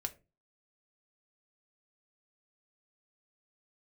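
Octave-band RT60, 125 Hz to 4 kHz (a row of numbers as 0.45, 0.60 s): 0.50, 0.40, 0.35, 0.25, 0.25, 0.20 s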